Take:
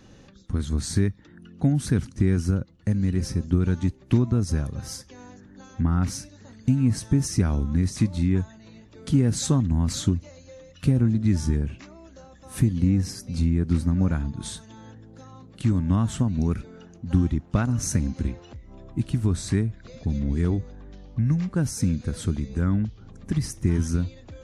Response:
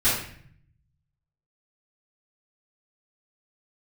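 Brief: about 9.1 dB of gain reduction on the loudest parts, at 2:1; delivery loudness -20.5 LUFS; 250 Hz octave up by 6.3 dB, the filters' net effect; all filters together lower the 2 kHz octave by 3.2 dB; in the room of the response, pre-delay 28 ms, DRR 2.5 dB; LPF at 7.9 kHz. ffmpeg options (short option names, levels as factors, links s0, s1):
-filter_complex "[0:a]lowpass=7900,equalizer=f=250:t=o:g=8,equalizer=f=2000:t=o:g=-4.5,acompressor=threshold=0.0398:ratio=2,asplit=2[s0][s1];[1:a]atrim=start_sample=2205,adelay=28[s2];[s1][s2]afir=irnorm=-1:irlink=0,volume=0.133[s3];[s0][s3]amix=inputs=2:normalize=0,volume=1.78"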